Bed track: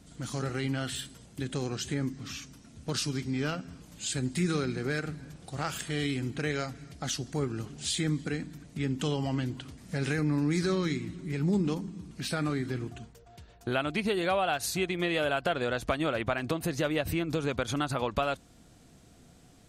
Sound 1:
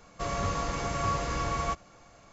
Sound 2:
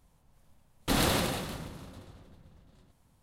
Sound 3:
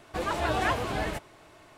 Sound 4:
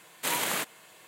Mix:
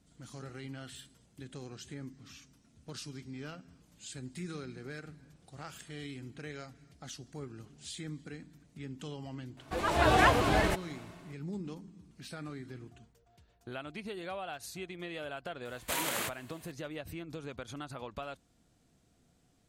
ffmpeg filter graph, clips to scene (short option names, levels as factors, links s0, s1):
-filter_complex "[0:a]volume=0.237[s0];[3:a]dynaudnorm=f=100:g=7:m=2.51,atrim=end=1.77,asetpts=PTS-STARTPTS,volume=0.596,afade=t=in:d=0.004:c=hsin,afade=t=out:st=1.766:d=0.004:c=hsin,adelay=9570[s1];[4:a]atrim=end=1.07,asetpts=PTS-STARTPTS,volume=0.562,afade=t=in:d=0.004:c=hsin,afade=t=out:st=1.066:d=0.004:c=hsin,adelay=15650[s2];[s0][s1][s2]amix=inputs=3:normalize=0"